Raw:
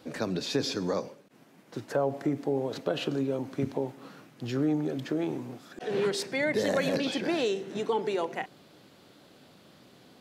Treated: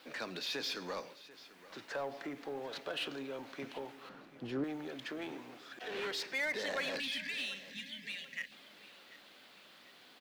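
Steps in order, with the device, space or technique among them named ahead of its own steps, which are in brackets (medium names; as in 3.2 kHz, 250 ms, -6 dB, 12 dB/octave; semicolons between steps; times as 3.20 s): amplifier tone stack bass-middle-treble 5-5-5; 7.00–8.52 s: spectral selection erased 300–1600 Hz; phone line with mismatched companding (band-pass 360–3400 Hz; companding laws mixed up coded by mu); 4.09–4.64 s: tilt shelf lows +10 dB; feedback delay 740 ms, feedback 44%, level -18 dB; trim +4 dB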